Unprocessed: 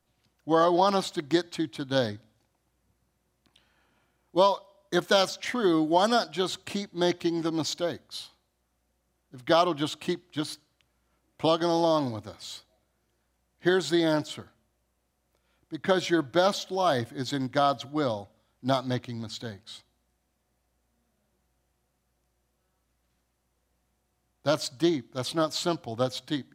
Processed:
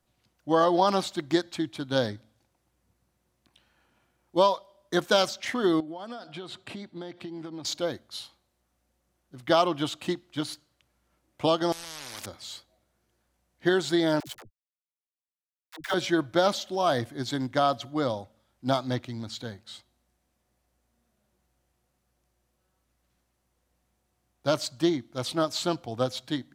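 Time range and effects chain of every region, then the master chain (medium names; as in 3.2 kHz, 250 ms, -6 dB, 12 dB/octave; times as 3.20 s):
5.80–7.65 s: peaking EQ 6.4 kHz -13.5 dB 0.76 oct + compression 12:1, threshold -34 dBFS + Chebyshev band-pass 120–7800 Hz
11.72–12.26 s: compression, threshold -34 dBFS + spectrum-flattening compressor 10:1
14.20–15.94 s: small samples zeroed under -35.5 dBFS + peaking EQ 230 Hz -12 dB 1.9 oct + phase dispersion lows, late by 79 ms, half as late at 380 Hz
whole clip: none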